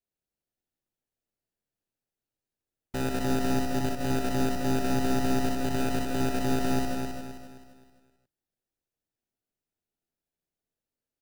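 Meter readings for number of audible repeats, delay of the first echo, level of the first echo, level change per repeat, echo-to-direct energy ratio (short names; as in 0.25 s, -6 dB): 13, 61 ms, -5.0 dB, no steady repeat, 1.0 dB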